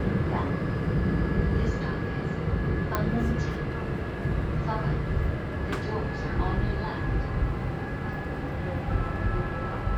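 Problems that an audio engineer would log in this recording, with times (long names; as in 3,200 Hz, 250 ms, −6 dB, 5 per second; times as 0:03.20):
0:02.95: click −11 dBFS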